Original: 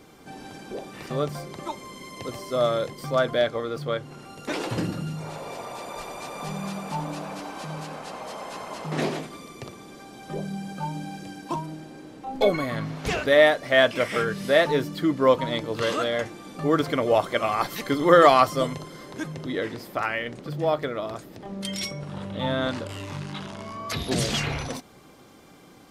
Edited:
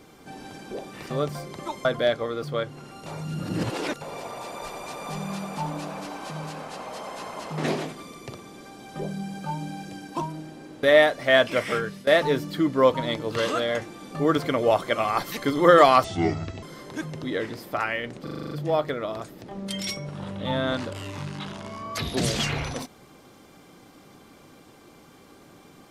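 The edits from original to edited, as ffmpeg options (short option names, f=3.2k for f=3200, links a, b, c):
-filter_complex "[0:a]asplit=15[a][b][c][d][e][f][g][h][i][j][k][l][m][n][o];[a]atrim=end=1.852[p];[b]atrim=start=3.188:end=4.402[q];[c]atrim=start=4.398:end=5.352,asetpts=PTS-STARTPTS,areverse[r];[d]atrim=start=5.348:end=12.172[s];[e]atrim=start=13.268:end=14.51,asetpts=PTS-STARTPTS,afade=t=out:st=0.762:d=0.48:c=qsin:silence=0.112202[t];[f]atrim=start=14.51:end=18.484,asetpts=PTS-STARTPTS,afade=t=in:d=0.004:c=hsin:silence=0.112202[u];[g]atrim=start=18.48:end=18.85,asetpts=PTS-STARTPTS,asetrate=27783,aresample=44100[v];[h]atrim=start=18.846:end=20.492[w];[i]atrim=start=20.448:end=20.492[x];[j]atrim=start=20.448:end=20.492[y];[k]atrim=start=20.448:end=20.492[z];[l]atrim=start=20.448:end=20.492[aa];[m]atrim=start=20.448:end=20.492[ab];[n]atrim=start=20.448:end=20.492[ac];[o]atrim=start=20.448[ad];[p][q]acrossfade=d=0.004:c1=hsin:c2=hsin[ae];[ae][r]acrossfade=d=0.004:c1=hsin:c2=hsin[af];[af][s]acrossfade=d=0.004:c1=hsin:c2=hsin[ag];[t][u]concat=n=2:v=0:a=1[ah];[ag][ah]acrossfade=d=0.004:c1=hsin:c2=hsin[ai];[ai][v]acrossfade=d=0.004:c1=hsin:c2=hsin[aj];[aj][w]acrossfade=d=0.004:c1=hsin:c2=hsin[ak];[ak][x]acrossfade=d=0.004:c1=hsin:c2=hsin[al];[al][y]acrossfade=d=0.004:c1=hsin:c2=hsin[am];[am][z]acrossfade=d=0.004:c1=hsin:c2=hsin[an];[an][aa]acrossfade=d=0.004:c1=hsin:c2=hsin[ao];[ao][ab]acrossfade=d=0.004:c1=hsin:c2=hsin[ap];[ap][ac]acrossfade=d=0.004:c1=hsin:c2=hsin[aq];[aq][ad]acrossfade=d=0.004:c1=hsin:c2=hsin"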